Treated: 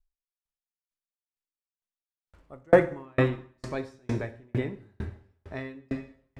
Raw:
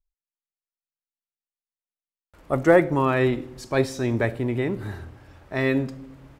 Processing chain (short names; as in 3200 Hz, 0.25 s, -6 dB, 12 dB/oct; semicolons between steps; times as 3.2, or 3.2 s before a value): Bessel low-pass 8400 Hz, order 2; low shelf 110 Hz +7.5 dB; plate-style reverb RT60 1.7 s, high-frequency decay 0.9×, DRR 5 dB; dB-ramp tremolo decaying 2.2 Hz, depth 40 dB